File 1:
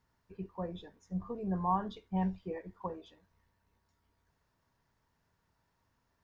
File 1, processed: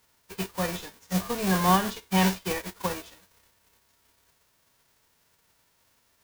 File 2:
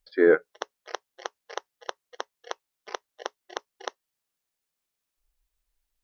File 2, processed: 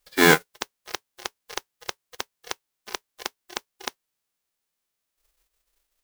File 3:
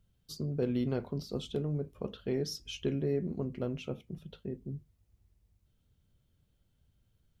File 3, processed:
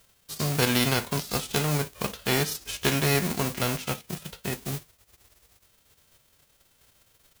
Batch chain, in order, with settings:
spectral envelope flattened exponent 0.3
loudness normalisation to −27 LKFS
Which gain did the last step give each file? +10.0, +2.0, +7.5 decibels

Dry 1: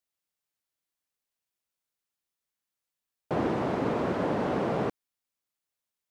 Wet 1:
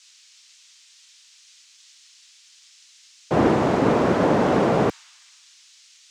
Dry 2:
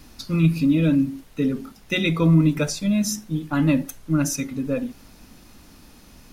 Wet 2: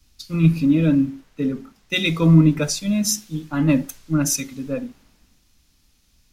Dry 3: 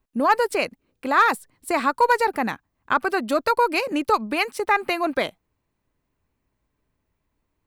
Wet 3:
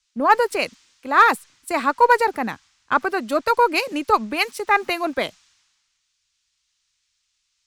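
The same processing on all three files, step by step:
noise in a band 960–7,100 Hz −56 dBFS
multiband upward and downward expander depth 70%
loudness normalisation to −20 LKFS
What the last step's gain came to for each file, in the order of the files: +9.0, +0.5, +1.0 decibels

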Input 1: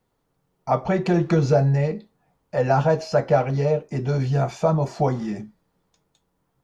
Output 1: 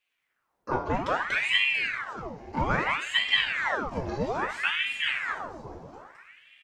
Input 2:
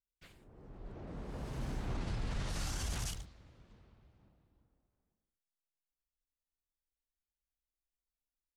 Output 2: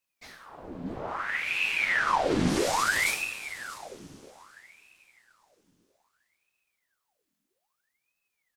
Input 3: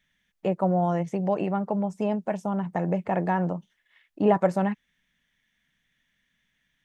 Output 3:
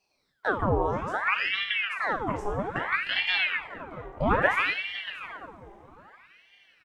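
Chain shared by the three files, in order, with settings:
single-tap delay 637 ms −15.5 dB
coupled-rooms reverb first 0.57 s, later 4.7 s, from −18 dB, DRR 0 dB
ring modulator whose carrier an LFO sweeps 1,400 Hz, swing 85%, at 0.61 Hz
loudness normalisation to −27 LKFS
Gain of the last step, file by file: −6.0, +11.5, −1.0 decibels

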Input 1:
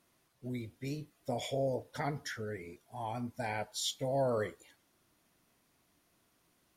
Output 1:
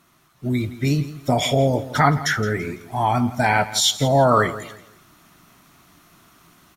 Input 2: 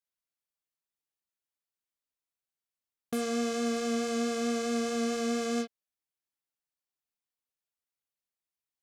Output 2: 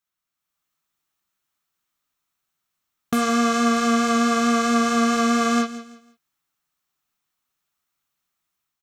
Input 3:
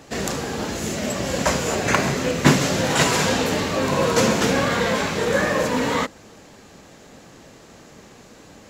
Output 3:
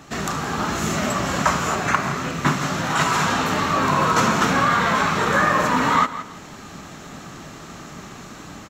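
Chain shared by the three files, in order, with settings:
thirty-one-band graphic EQ 160 Hz +5 dB, 500 Hz −10 dB, 1,250 Hz +8 dB, 10,000 Hz −5 dB
automatic gain control gain up to 6.5 dB
notch filter 4,800 Hz, Q 16
repeating echo 167 ms, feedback 29%, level −16 dB
dynamic equaliser 1,100 Hz, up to +6 dB, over −32 dBFS, Q 0.89
downward compressor 1.5 to 1, threshold −29 dBFS
loudness normalisation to −20 LKFS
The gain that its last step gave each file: +12.5, +7.0, +1.0 decibels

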